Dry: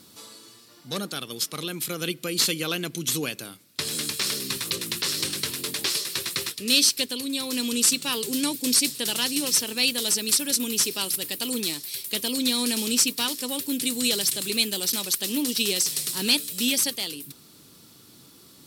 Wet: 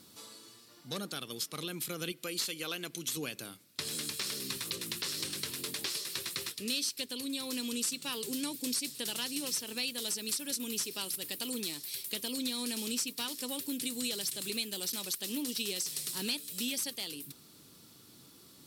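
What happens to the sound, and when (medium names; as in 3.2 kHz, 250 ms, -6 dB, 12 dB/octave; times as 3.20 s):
2.12–3.17 s: bass shelf 230 Hz -11 dB
whole clip: compression 2.5:1, threshold -29 dBFS; trim -5.5 dB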